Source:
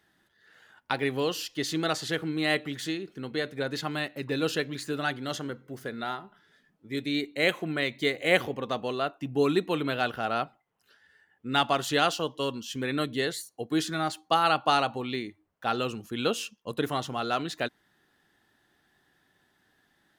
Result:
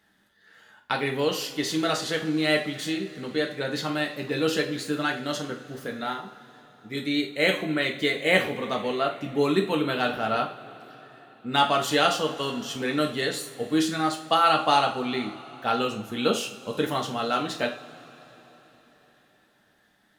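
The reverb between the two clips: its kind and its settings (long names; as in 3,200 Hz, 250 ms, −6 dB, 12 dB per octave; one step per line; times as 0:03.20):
coupled-rooms reverb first 0.39 s, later 4.3 s, from −21 dB, DRR 1.5 dB
level +1 dB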